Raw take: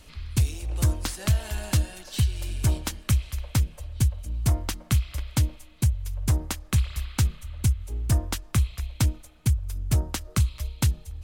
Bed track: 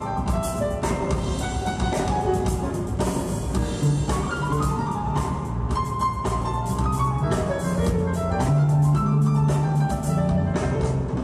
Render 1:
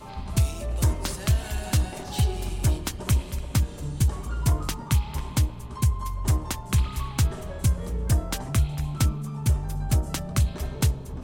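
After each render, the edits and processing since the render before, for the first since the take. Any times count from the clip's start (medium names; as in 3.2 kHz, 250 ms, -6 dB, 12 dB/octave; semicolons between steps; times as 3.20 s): add bed track -13.5 dB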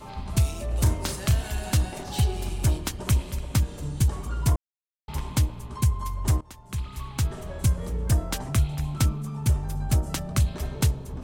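0.69–1.41 s: doubling 36 ms -9 dB; 4.56–5.08 s: mute; 6.41–7.61 s: fade in, from -20.5 dB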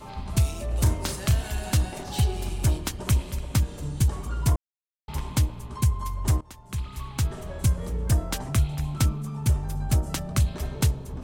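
no audible change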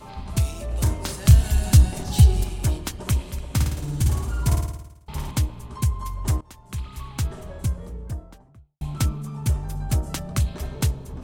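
1.25–2.44 s: tone controls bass +10 dB, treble +6 dB; 3.54–5.31 s: flutter echo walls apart 9.4 m, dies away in 0.86 s; 7.12–8.81 s: studio fade out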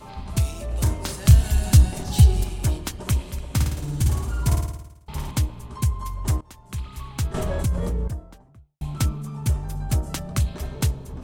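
7.34–8.08 s: level flattener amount 70%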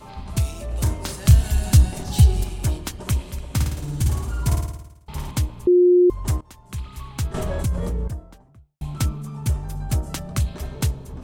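5.67–6.10 s: bleep 357 Hz -10.5 dBFS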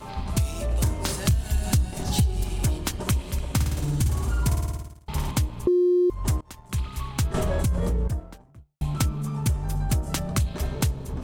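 compression 4:1, threshold -24 dBFS, peak gain reduction 14 dB; waveshaping leveller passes 1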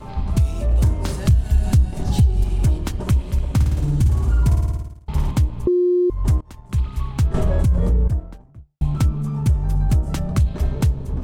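tilt EQ -2 dB/octave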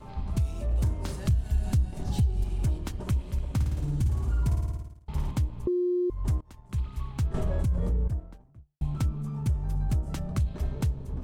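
trim -9.5 dB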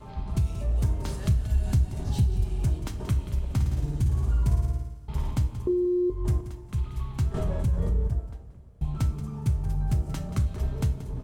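delay 180 ms -14 dB; two-slope reverb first 0.33 s, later 3.9 s, from -20 dB, DRR 7 dB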